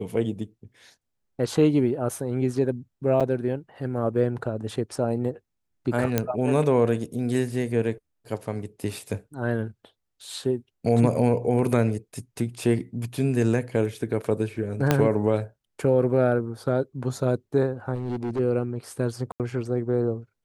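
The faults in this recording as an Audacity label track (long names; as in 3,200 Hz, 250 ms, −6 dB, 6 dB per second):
3.200000	3.210000	drop-out 6.8 ms
6.180000	6.180000	click −7 dBFS
14.910000	14.910000	click −5 dBFS
17.940000	18.400000	clipping −24.5 dBFS
19.320000	19.400000	drop-out 78 ms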